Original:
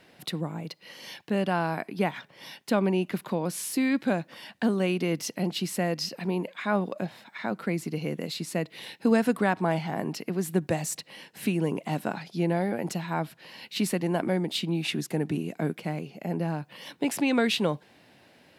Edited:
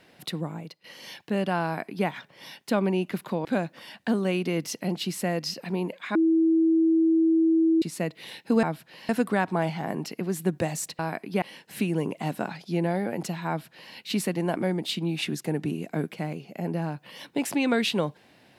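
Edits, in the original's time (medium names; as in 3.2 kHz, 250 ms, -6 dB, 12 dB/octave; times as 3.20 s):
0.52–0.84 s: fade out, to -13 dB
1.64–2.07 s: copy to 11.08 s
3.45–4.00 s: delete
6.70–8.37 s: bleep 325 Hz -17.5 dBFS
13.14–13.60 s: copy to 9.18 s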